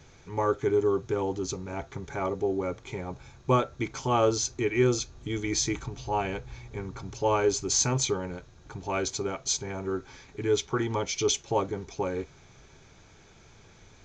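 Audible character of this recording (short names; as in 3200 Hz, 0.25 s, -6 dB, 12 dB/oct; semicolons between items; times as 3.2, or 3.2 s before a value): noise floor -55 dBFS; spectral tilt -4.0 dB/oct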